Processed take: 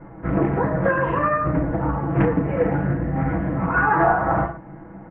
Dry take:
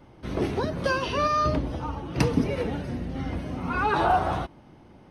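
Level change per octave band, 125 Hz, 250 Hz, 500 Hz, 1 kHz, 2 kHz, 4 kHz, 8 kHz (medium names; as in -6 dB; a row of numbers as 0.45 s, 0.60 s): +7.5 dB, +6.5 dB, +6.0 dB, +4.5 dB, +7.5 dB, under -15 dB, under -35 dB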